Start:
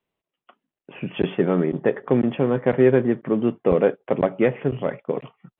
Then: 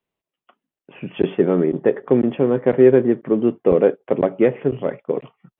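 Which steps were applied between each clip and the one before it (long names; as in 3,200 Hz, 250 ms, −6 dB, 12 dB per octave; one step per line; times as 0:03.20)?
dynamic equaliser 370 Hz, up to +7 dB, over −30 dBFS, Q 0.95
level −2 dB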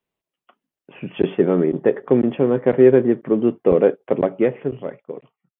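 fade-out on the ending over 1.49 s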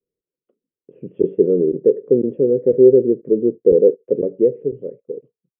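drawn EQ curve 260 Hz 0 dB, 480 Hz +10 dB, 780 Hz −27 dB
level −4 dB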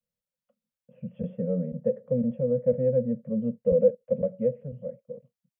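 elliptic band-stop filter 230–530 Hz, stop band 40 dB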